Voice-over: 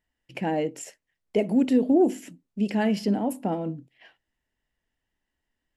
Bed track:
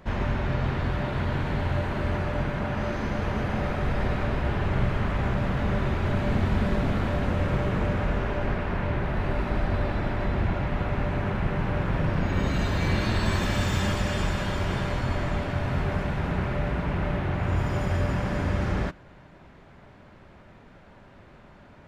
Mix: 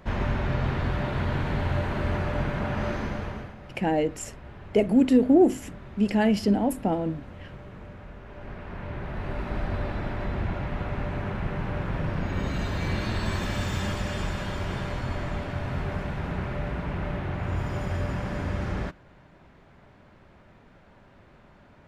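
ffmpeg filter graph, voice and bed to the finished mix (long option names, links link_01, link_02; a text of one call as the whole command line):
ffmpeg -i stem1.wav -i stem2.wav -filter_complex "[0:a]adelay=3400,volume=2dB[link_01];[1:a]volume=14dB,afade=type=out:start_time=2.91:duration=0.64:silence=0.133352,afade=type=in:start_time=8.23:duration=1.39:silence=0.199526[link_02];[link_01][link_02]amix=inputs=2:normalize=0" out.wav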